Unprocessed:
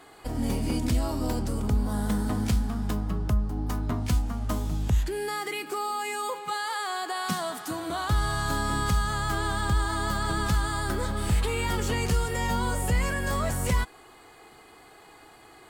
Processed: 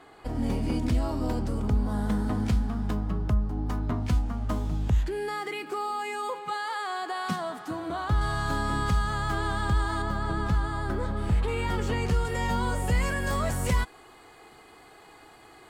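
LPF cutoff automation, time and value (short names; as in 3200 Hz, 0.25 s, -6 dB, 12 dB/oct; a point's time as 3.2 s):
LPF 6 dB/oct
2800 Hz
from 7.36 s 1700 Hz
from 8.21 s 3300 Hz
from 10.02 s 1300 Hz
from 11.48 s 2400 Hz
from 12.25 s 4400 Hz
from 12.9 s 8900 Hz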